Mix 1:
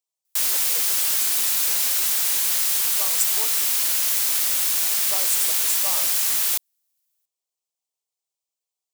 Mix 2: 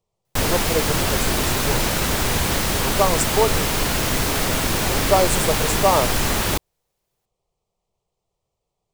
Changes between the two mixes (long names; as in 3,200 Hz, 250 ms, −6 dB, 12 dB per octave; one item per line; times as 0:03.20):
background −3.0 dB
master: remove first difference